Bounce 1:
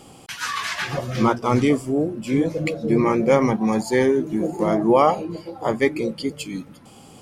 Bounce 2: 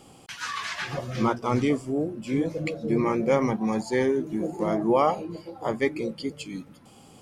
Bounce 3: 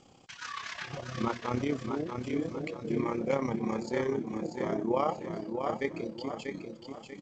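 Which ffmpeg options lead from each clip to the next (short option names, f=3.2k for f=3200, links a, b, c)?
-filter_complex "[0:a]acrossover=split=9100[a][b];[b]acompressor=threshold=-57dB:ratio=4:attack=1:release=60[c];[a][c]amix=inputs=2:normalize=0,volume=-5.5dB"
-af "tremolo=f=33:d=0.621,aecho=1:1:640|1280|1920|2560:0.501|0.185|0.0686|0.0254,volume=-5dB" -ar 16000 -c:a g722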